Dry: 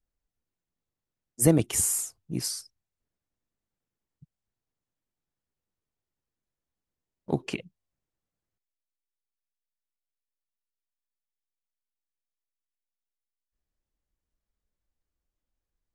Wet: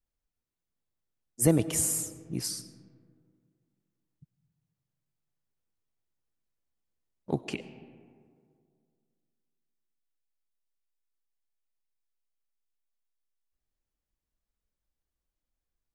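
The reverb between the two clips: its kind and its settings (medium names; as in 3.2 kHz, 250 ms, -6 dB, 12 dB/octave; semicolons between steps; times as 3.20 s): algorithmic reverb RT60 2.2 s, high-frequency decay 0.4×, pre-delay 55 ms, DRR 14 dB; trim -2.5 dB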